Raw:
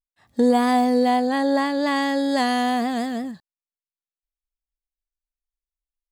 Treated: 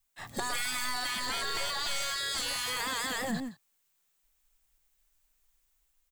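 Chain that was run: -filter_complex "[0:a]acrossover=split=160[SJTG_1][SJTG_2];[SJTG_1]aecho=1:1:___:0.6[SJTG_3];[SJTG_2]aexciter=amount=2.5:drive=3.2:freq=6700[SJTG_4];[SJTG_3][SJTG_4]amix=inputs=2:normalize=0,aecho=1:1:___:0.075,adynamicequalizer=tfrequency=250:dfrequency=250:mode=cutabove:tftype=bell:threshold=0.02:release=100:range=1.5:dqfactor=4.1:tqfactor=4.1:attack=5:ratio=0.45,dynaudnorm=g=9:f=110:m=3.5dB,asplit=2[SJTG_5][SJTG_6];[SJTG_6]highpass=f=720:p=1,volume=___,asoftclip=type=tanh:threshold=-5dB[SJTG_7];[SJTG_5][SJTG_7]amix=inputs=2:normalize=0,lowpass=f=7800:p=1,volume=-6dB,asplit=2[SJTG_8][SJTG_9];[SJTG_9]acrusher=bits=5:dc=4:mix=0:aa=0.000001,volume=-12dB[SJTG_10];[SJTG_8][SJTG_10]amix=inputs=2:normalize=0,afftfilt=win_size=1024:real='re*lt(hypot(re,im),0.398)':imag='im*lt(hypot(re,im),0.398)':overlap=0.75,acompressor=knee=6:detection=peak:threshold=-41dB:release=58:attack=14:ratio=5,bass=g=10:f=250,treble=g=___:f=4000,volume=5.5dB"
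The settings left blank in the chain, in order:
7.5, 167, 15dB, -1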